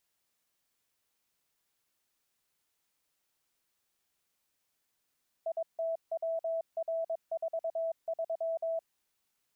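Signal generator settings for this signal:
Morse code "ITWR43" 22 words per minute 657 Hz −30 dBFS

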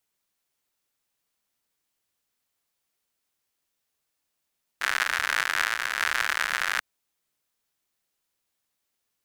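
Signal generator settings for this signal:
rain-like ticks over hiss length 1.99 s, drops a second 110, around 1,600 Hz, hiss −30 dB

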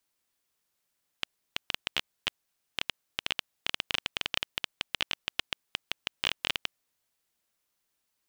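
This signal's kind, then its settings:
Geiger counter clicks 11 per second −9.5 dBFS 5.60 s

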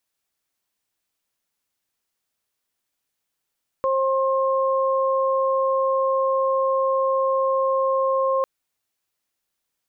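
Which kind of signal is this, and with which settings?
steady harmonic partials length 4.60 s, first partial 533 Hz, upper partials −3 dB, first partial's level −19.5 dB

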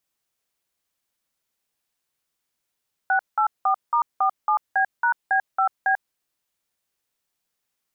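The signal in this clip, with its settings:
touch tones "684*47B#B5B", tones 92 ms, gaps 184 ms, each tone −19.5 dBFS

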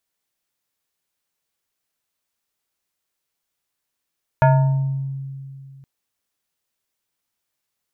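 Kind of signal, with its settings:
two-operator FM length 1.42 s, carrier 136 Hz, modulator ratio 5.72, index 1.3, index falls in 0.98 s exponential, decay 2.60 s, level −9 dB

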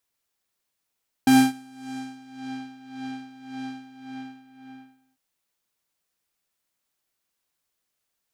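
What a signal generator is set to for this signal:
subtractive patch with tremolo C4, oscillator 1 triangle, oscillator 2 saw, interval +19 semitones, detune 23 cents, oscillator 2 level −7.5 dB, sub −22 dB, noise −17 dB, filter lowpass, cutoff 2,400 Hz, Q 0.9, filter envelope 2.5 octaves, filter decay 1.32 s, filter sustain 35%, attack 2.9 ms, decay 0.25 s, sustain −23 dB, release 1.40 s, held 2.50 s, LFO 1.8 Hz, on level 14 dB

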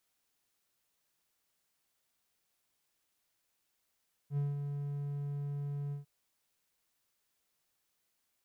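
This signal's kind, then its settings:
note with an ADSR envelope triangle 143 Hz, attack 72 ms, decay 184 ms, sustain −6 dB, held 1.62 s, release 131 ms −27 dBFS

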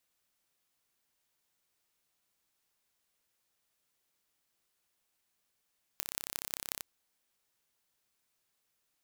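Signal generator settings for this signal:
impulse train 33.4 per second, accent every 6, −5.5 dBFS 0.83 s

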